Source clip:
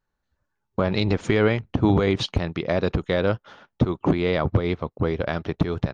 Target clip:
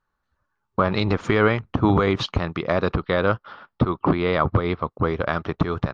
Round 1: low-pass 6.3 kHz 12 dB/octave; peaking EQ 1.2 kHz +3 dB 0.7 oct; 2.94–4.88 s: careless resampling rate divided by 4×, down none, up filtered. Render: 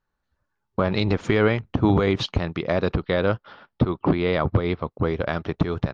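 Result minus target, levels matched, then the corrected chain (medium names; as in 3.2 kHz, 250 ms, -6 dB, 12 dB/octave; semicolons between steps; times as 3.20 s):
1 kHz band -4.0 dB
low-pass 6.3 kHz 12 dB/octave; peaking EQ 1.2 kHz +10.5 dB 0.7 oct; 2.94–4.88 s: careless resampling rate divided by 4×, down none, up filtered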